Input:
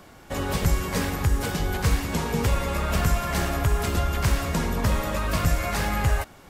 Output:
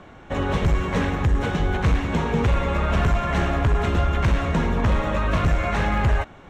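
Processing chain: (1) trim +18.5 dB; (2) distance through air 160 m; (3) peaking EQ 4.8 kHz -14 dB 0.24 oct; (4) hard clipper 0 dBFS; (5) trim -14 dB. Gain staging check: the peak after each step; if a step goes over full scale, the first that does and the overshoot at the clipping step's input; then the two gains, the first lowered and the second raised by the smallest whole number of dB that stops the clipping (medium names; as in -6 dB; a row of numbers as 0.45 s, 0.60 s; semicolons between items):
+8.0 dBFS, +7.0 dBFS, +7.0 dBFS, 0.0 dBFS, -14.0 dBFS; step 1, 7.0 dB; step 1 +11.5 dB, step 5 -7 dB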